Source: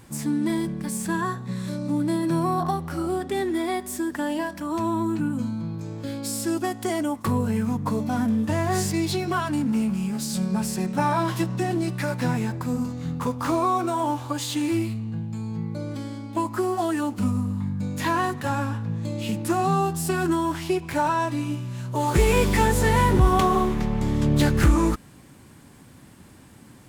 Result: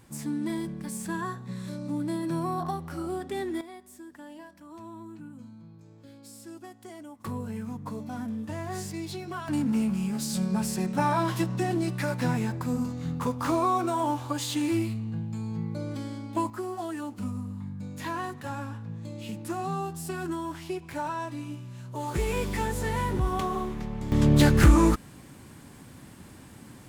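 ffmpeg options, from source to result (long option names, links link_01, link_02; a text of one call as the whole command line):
ffmpeg -i in.wav -af "asetnsamples=nb_out_samples=441:pad=0,asendcmd='3.61 volume volume -18.5dB;7.2 volume volume -11dB;9.48 volume volume -2.5dB;16.5 volume volume -9.5dB;24.12 volume volume 1dB',volume=-6.5dB" out.wav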